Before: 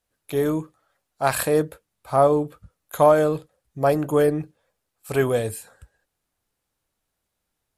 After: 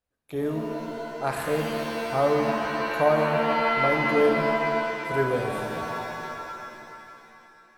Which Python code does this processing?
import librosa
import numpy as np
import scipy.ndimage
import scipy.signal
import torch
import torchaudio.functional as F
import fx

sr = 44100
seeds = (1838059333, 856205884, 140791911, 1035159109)

y = fx.high_shelf(x, sr, hz=4100.0, db=-10.0)
y = fx.rev_shimmer(y, sr, seeds[0], rt60_s=2.9, semitones=7, shimmer_db=-2, drr_db=2.0)
y = y * librosa.db_to_amplitude(-6.5)